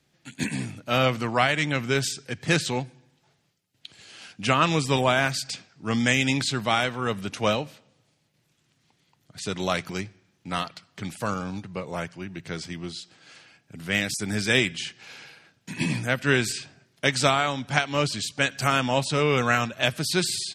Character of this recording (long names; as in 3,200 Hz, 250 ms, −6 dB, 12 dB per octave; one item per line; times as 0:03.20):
background noise floor −69 dBFS
spectral slope −4.0 dB per octave